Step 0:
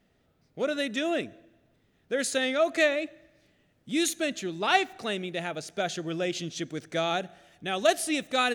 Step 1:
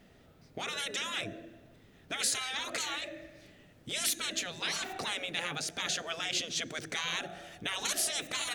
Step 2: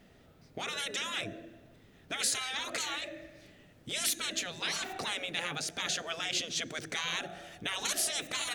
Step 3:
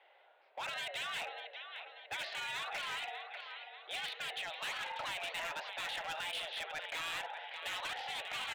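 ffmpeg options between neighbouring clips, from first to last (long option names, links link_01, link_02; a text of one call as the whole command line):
ffmpeg -i in.wav -filter_complex "[0:a]afftfilt=real='re*lt(hypot(re,im),0.0562)':imag='im*lt(hypot(re,im),0.0562)':win_size=1024:overlap=0.75,asplit=2[link_01][link_02];[link_02]acompressor=threshold=-47dB:ratio=6,volume=-2dB[link_03];[link_01][link_03]amix=inputs=2:normalize=0,volume=3.5dB" out.wav
ffmpeg -i in.wav -af anull out.wav
ffmpeg -i in.wav -af "aecho=1:1:592|1184|1776|2368|2960|3552:0.299|0.152|0.0776|0.0396|0.0202|0.0103,highpass=frequency=440:width_type=q:width=0.5412,highpass=frequency=440:width_type=q:width=1.307,lowpass=frequency=3300:width_type=q:width=0.5176,lowpass=frequency=3300:width_type=q:width=0.7071,lowpass=frequency=3300:width_type=q:width=1.932,afreqshift=140,asoftclip=type=hard:threshold=-36dB" out.wav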